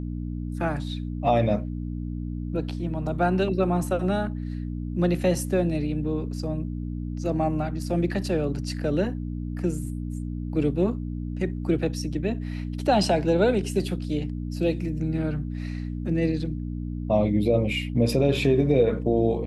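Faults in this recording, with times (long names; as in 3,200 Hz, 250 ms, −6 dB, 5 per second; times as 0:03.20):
mains hum 60 Hz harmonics 5 −31 dBFS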